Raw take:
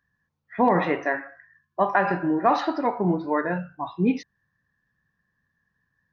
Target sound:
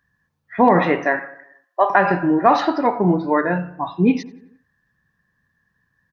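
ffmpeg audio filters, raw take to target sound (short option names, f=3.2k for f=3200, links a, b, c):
-filter_complex "[0:a]asettb=1/sr,asplit=3[a][b][c];[a]atrim=end=1.194[d];[b]atrim=start=1.19:end=1.9,asetpts=PTS-STARTPTS,afade=t=in:d=0.004:c=qsin,afade=t=out:st=0.706:d=0.004:c=qsin,highpass=f=420:w=0.5412,highpass=f=420:w=1.3066[e];[c]atrim=start=1.896[f];[d][e]acrossfade=d=0.004:c1=hsin:c2=qsin[g];[g][f]acrossfade=d=0.004:c1=qsin:c2=hsin,asplit=2[h][i];[i]adelay=90,lowpass=f=2.5k:p=1,volume=-19dB,asplit=2[j][k];[k]adelay=90,lowpass=f=2.5k:p=1,volume=0.55,asplit=2[l][m];[m]adelay=90,lowpass=f=2.5k:p=1,volume=0.55,asplit=2[n][o];[o]adelay=90,lowpass=f=2.5k:p=1,volume=0.55,asplit=2[p][q];[q]adelay=90,lowpass=f=2.5k:p=1,volume=0.55[r];[h][j][l][n][p][r]amix=inputs=6:normalize=0,volume=6dB"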